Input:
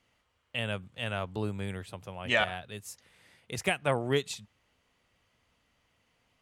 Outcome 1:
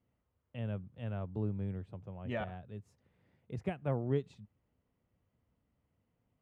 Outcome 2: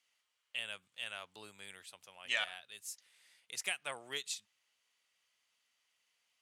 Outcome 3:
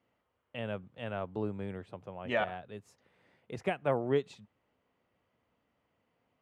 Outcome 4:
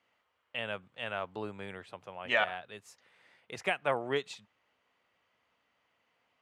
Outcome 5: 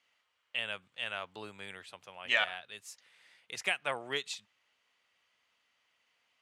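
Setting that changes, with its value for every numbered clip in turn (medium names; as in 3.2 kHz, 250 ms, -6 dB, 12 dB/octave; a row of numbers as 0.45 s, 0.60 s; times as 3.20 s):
band-pass filter, frequency: 120 Hz, 7.8 kHz, 390 Hz, 1.1 kHz, 2.9 kHz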